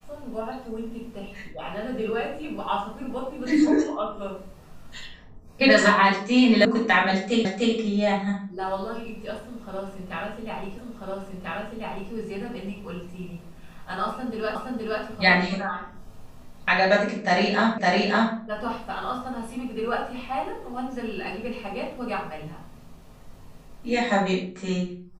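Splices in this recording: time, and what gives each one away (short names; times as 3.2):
6.65 sound cut off
7.45 repeat of the last 0.3 s
10.78 repeat of the last 1.34 s
14.55 repeat of the last 0.47 s
17.78 repeat of the last 0.56 s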